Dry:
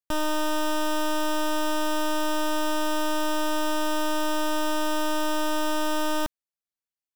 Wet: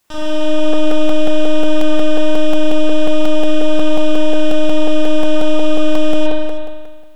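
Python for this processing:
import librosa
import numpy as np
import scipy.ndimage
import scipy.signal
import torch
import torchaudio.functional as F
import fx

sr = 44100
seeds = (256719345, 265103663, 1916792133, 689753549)

p1 = scipy.signal.sosfilt(scipy.signal.butter(2, 5100.0, 'lowpass', fs=sr, output='sos'), x)
p2 = fx.high_shelf(p1, sr, hz=2600.0, db=11.5)
p3 = fx.quant_dither(p2, sr, seeds[0], bits=10, dither='triangular')
p4 = fx.chorus_voices(p3, sr, voices=6, hz=1.1, base_ms=12, depth_ms=3.0, mix_pct=30)
p5 = p4 + fx.echo_single(p4, sr, ms=313, db=-13.0, dry=0)
p6 = fx.rev_spring(p5, sr, rt60_s=1.5, pass_ms=(39,), chirp_ms=45, drr_db=-7.5)
p7 = fx.buffer_crackle(p6, sr, first_s=0.73, period_s=0.18, block=128, kind='repeat')
y = F.gain(torch.from_numpy(p7), -3.0).numpy()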